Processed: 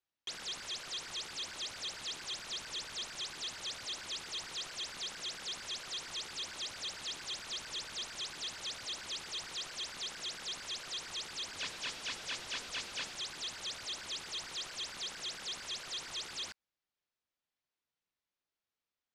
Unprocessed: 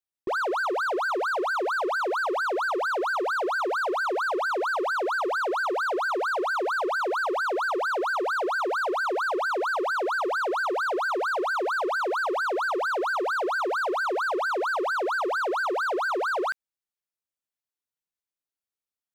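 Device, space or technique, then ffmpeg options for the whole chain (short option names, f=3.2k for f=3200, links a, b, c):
overflowing digital effects unit: -filter_complex "[0:a]asettb=1/sr,asplit=3[a][b][c];[a]atrim=end=11.504[d];[b]atrim=start=11.5:end=13.12,asetpts=PTS-STARTPTS,afade=t=in:d=0.004:c=qsin,afade=t=out:st=1.616:d=0.004:c=qsin,bandreject=f=50:t=h:w=6,bandreject=f=100:t=h:w=6,bandreject=f=150:t=h:w=6,bandreject=f=200:t=h:w=6,bandreject=f=250:t=h:w=6,bandreject=f=300:t=h:w=6,bandreject=f=350:t=h:w=6,bandreject=f=400:t=h:w=6,bandreject=f=450:t=h:w=6,bandreject=f=500:t=h:w=6[e];[c]atrim=start=13.116[f];[d][e]acrossfade=d=0.004:c1=hsin:c2=qsin[g];[g][f]acrossfade=d=0.004:c1=qsin:c2=hsin,aeval=exprs='(mod(53.1*val(0)+1,2)-1)/53.1':c=same,lowpass=5k,lowpass=8.1k,volume=4dB"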